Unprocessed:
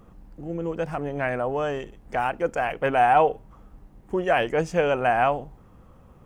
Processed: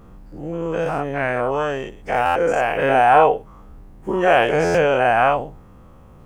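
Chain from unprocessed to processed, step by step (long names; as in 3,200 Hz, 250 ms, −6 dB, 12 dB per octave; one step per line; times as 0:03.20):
every bin's largest magnitude spread in time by 120 ms
buffer that repeats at 0:02.25/0:04.64, samples 512, times 8
level +1 dB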